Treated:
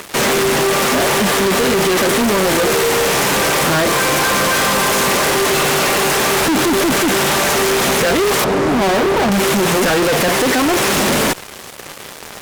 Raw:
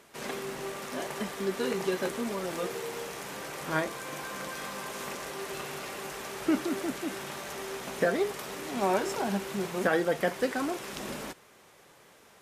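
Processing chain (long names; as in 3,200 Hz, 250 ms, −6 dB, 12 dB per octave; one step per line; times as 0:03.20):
0:08.44–0:09.32: low-pass filter 1,000 Hz 12 dB per octave
fuzz pedal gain 48 dB, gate −55 dBFS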